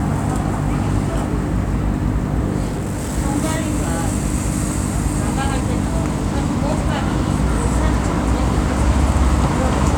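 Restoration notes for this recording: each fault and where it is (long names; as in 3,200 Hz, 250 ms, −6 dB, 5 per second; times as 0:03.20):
mains hum 50 Hz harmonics 6 −23 dBFS
0:02.67–0:03.18: clipping −19 dBFS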